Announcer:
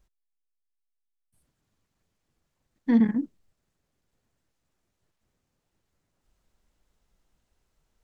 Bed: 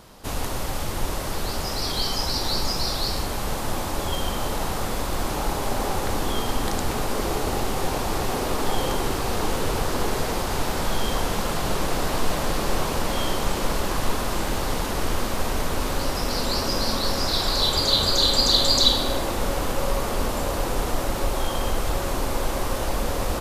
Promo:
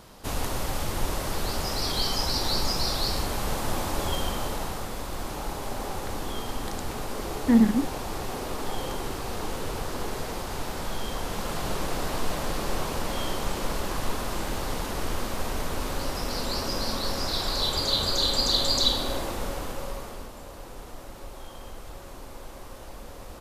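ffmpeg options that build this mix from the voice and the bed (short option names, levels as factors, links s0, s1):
-filter_complex "[0:a]adelay=4600,volume=1.26[s0];[1:a]volume=1.12,afade=t=out:st=4.09:d=0.79:silence=0.501187,afade=t=in:st=11.19:d=0.41:silence=0.749894,afade=t=out:st=19.18:d=1.13:silence=0.251189[s1];[s0][s1]amix=inputs=2:normalize=0"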